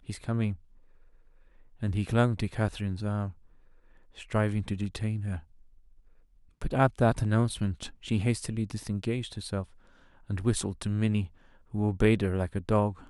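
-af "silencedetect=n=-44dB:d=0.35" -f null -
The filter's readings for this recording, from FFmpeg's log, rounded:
silence_start: 0.56
silence_end: 1.82 | silence_duration: 1.26
silence_start: 3.32
silence_end: 4.17 | silence_duration: 0.85
silence_start: 5.40
silence_end: 6.62 | silence_duration: 1.22
silence_start: 9.64
silence_end: 10.30 | silence_duration: 0.65
silence_start: 11.27
silence_end: 11.74 | silence_duration: 0.47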